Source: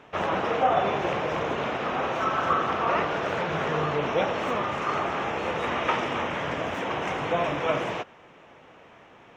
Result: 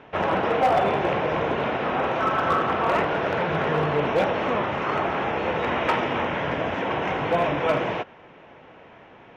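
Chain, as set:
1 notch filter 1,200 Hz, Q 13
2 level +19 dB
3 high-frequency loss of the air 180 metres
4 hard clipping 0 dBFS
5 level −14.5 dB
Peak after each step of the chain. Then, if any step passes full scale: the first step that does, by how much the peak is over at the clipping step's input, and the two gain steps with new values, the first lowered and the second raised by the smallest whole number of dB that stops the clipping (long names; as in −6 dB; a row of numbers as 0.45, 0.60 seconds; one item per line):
−11.0, +8.0, +7.5, 0.0, −14.5 dBFS
step 2, 7.5 dB
step 2 +11 dB, step 5 −6.5 dB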